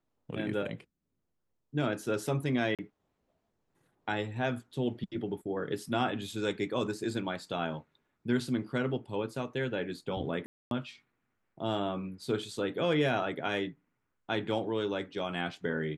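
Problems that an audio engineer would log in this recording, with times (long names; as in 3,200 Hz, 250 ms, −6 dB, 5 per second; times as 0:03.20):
0:02.75–0:02.79: drop-out 37 ms
0:10.46–0:10.71: drop-out 252 ms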